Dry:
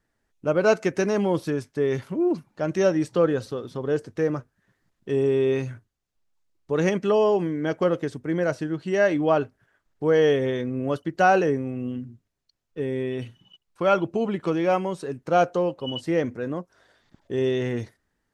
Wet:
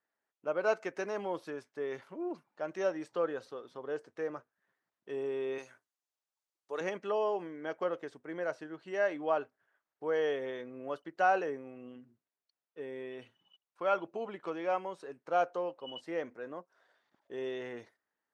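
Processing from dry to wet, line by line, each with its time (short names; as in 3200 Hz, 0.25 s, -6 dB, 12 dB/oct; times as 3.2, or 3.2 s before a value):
5.58–6.81 tone controls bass -12 dB, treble +11 dB
whole clip: HPF 780 Hz 12 dB/oct; tilt -3.5 dB/oct; gain -6.5 dB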